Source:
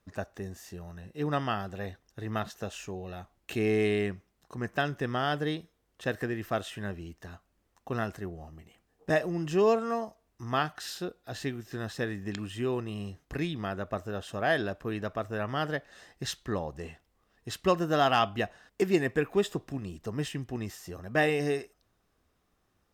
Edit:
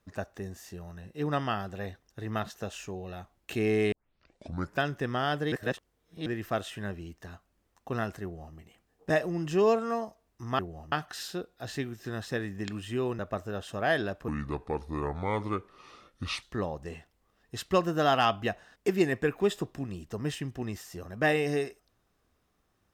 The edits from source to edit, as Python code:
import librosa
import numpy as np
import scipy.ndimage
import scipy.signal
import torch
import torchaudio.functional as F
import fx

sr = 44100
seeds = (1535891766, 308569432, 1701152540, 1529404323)

y = fx.edit(x, sr, fx.tape_start(start_s=3.92, length_s=0.9),
    fx.reverse_span(start_s=5.52, length_s=0.74),
    fx.duplicate(start_s=8.23, length_s=0.33, to_s=10.59),
    fx.cut(start_s=12.86, length_s=0.93),
    fx.speed_span(start_s=14.88, length_s=1.48, speed=0.69), tone=tone)